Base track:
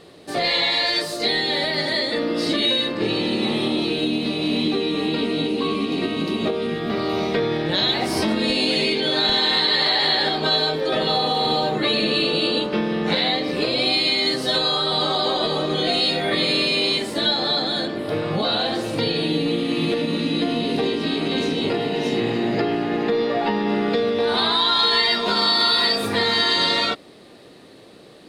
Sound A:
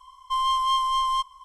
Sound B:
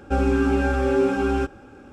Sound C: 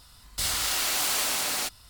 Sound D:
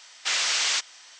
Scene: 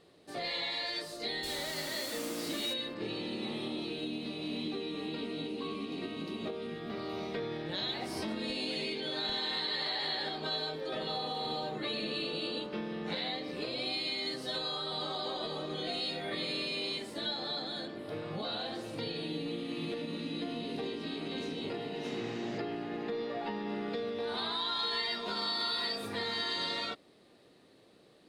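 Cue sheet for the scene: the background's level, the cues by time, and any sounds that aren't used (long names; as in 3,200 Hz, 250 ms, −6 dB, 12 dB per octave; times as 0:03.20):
base track −15.5 dB
0:01.05: mix in C −17 dB
0:21.78: mix in D −12 dB + resonant band-pass 400 Hz, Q 0.83
not used: A, B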